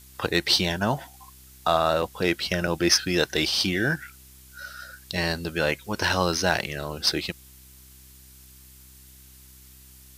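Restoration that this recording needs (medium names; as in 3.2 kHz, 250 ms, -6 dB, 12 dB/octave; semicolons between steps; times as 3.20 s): clip repair -8 dBFS; de-hum 64.7 Hz, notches 6; interpolate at 2.02/2.67 s, 5.8 ms; noise reduction 22 dB, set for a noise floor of -50 dBFS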